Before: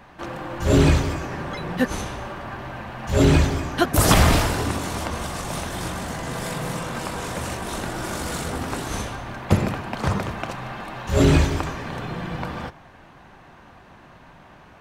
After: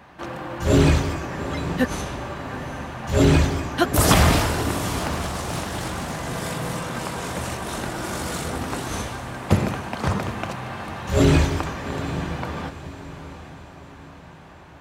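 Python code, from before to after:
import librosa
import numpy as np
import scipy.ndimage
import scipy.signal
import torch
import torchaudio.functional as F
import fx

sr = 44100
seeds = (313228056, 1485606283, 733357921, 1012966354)

y = scipy.signal.sosfilt(scipy.signal.butter(2, 47.0, 'highpass', fs=sr, output='sos'), x)
y = fx.echo_diffused(y, sr, ms=798, feedback_pct=49, wet_db=-13.0)
y = fx.doppler_dist(y, sr, depth_ms=0.39, at=(4.99, 6.17))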